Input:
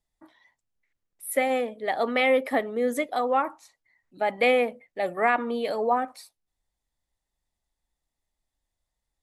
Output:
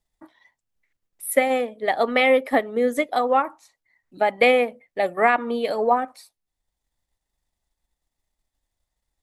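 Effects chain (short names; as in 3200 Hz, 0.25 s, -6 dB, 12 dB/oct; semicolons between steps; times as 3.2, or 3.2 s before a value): transient shaper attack +3 dB, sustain -4 dB; gain +3.5 dB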